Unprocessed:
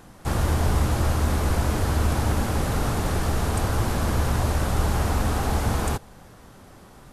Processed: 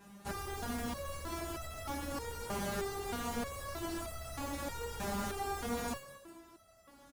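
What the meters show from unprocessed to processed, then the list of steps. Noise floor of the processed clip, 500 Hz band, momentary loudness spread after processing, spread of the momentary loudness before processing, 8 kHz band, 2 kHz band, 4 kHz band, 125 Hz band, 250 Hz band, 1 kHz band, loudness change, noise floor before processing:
-61 dBFS, -11.0 dB, 6 LU, 2 LU, -11.0 dB, -11.5 dB, -11.0 dB, -24.0 dB, -13.0 dB, -11.5 dB, -15.5 dB, -48 dBFS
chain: HPF 45 Hz 12 dB/oct; frequency-shifting echo 0.203 s, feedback 36%, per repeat +64 Hz, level -12 dB; modulation noise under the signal 23 dB; overloaded stage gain 23 dB; stepped resonator 3.2 Hz 200–660 Hz; gain +5 dB

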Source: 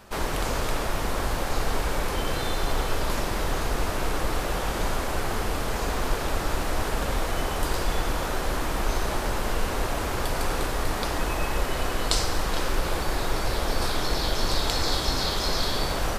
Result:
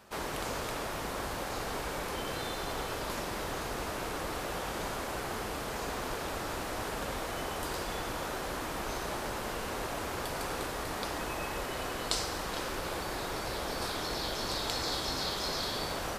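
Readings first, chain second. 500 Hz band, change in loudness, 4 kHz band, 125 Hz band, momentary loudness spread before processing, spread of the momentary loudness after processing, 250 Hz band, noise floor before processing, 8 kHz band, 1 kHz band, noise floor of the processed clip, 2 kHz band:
-7.0 dB, -7.5 dB, -6.5 dB, -12.0 dB, 3 LU, 4 LU, -7.5 dB, -29 dBFS, -6.5 dB, -6.5 dB, -38 dBFS, -6.5 dB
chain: HPF 130 Hz 6 dB/oct; gain -6.5 dB

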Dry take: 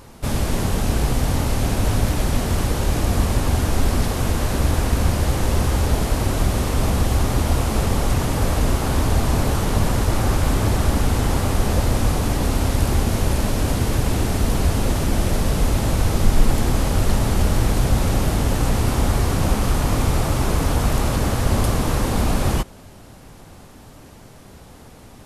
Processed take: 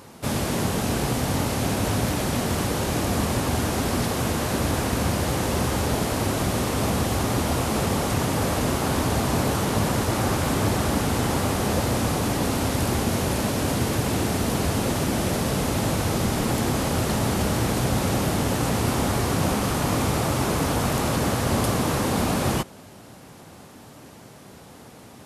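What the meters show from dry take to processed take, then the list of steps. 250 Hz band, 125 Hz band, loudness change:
-0.5 dB, -5.0 dB, -3.0 dB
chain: HPF 120 Hz 12 dB/oct

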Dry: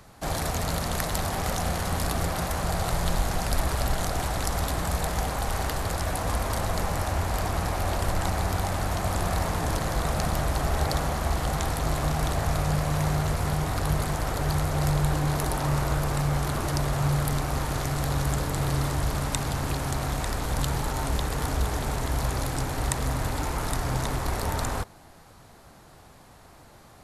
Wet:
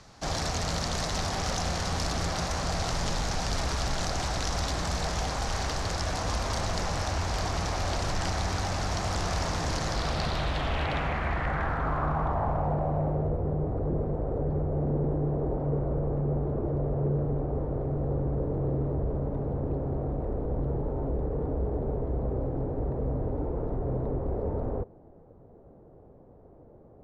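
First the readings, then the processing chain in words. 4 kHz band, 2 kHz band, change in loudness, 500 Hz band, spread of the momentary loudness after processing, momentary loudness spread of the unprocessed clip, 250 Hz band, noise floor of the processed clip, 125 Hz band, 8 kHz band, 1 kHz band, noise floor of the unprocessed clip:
-0.5 dB, -3.5 dB, -2.5 dB, +0.5 dB, 3 LU, 3 LU, -1.0 dB, -53 dBFS, -3.0 dB, -4.5 dB, -3.5 dB, -51 dBFS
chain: wavefolder -21 dBFS; low-pass sweep 5700 Hz -> 470 Hz, 9.85–13.42; gain -2 dB

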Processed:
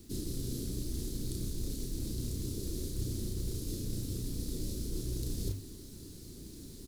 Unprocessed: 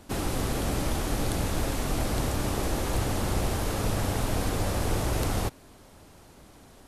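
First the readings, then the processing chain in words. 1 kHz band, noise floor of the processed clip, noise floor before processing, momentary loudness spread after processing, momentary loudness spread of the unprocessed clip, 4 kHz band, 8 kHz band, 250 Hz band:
under -30 dB, -49 dBFS, -53 dBFS, 11 LU, 1 LU, -9.5 dB, -7.5 dB, -8.0 dB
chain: Chebyshev band-stop 370–4100 Hz, order 3; notches 50/100 Hz; reverse; compressor 16:1, threshold -39 dBFS, peak gain reduction 17 dB; reverse; companded quantiser 6-bit; doubler 33 ms -4.5 dB; gain +5 dB

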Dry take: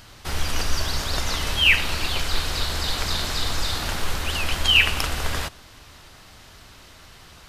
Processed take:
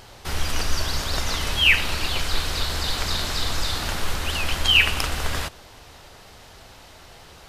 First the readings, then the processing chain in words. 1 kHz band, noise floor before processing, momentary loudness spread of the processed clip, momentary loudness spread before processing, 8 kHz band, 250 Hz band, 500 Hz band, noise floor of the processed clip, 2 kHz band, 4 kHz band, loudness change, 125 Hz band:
0.0 dB, -47 dBFS, 11 LU, 11 LU, 0.0 dB, 0.0 dB, 0.0 dB, -47 dBFS, 0.0 dB, 0.0 dB, 0.0 dB, 0.0 dB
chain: vibrato 4.5 Hz 25 cents; band noise 360–930 Hz -54 dBFS

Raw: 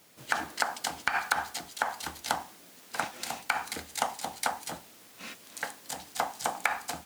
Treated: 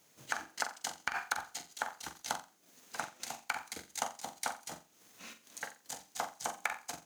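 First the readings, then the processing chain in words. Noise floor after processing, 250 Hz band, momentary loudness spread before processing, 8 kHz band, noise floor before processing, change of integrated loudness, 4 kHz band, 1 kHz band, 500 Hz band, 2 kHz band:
-67 dBFS, -8.5 dB, 13 LU, -3.5 dB, -54 dBFS, -7.0 dB, -6.5 dB, -8.0 dB, -8.0 dB, -7.0 dB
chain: transient shaper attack +1 dB, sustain -11 dB; bell 6400 Hz +8.5 dB 0.23 oct; flutter echo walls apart 7.5 m, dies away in 0.3 s; gain -8 dB

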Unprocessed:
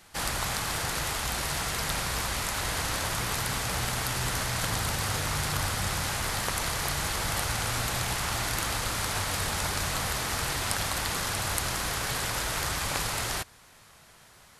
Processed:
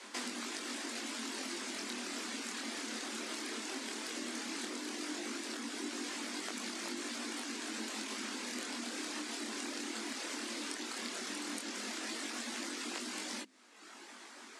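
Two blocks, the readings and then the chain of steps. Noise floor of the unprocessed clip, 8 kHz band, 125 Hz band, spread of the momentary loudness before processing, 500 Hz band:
-55 dBFS, -11.0 dB, under -30 dB, 1 LU, -9.5 dB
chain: LPF 8500 Hz 24 dB/oct; notches 60/120 Hz; reverb removal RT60 0.91 s; dynamic EQ 870 Hz, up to -6 dB, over -49 dBFS, Q 0.73; compressor 8:1, threshold -44 dBFS, peak gain reduction 16 dB; frequency shift +200 Hz; chorus 0.15 Hz, delay 20 ms, depth 6.8 ms; gain +8.5 dB

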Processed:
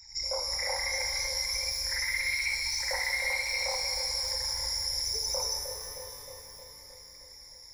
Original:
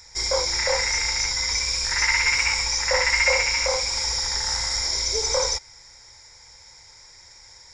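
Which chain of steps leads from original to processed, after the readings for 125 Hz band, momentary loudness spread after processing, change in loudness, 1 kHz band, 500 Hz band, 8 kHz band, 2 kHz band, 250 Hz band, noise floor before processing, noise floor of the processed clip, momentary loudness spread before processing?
-10.5 dB, 18 LU, -8.5 dB, -10.5 dB, -11.5 dB, -9.5 dB, -9.0 dB, under -10 dB, -49 dBFS, -50 dBFS, 5 LU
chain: formant sharpening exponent 2; pre-echo 79 ms -21.5 dB; compressor 3:1, threshold -28 dBFS, peak gain reduction 9.5 dB; on a send: dark delay 0.311 s, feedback 63%, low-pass 640 Hz, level -4 dB; on the sum: shimmer reverb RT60 3 s, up +12 st, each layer -8 dB, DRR 3 dB; gain -4.5 dB

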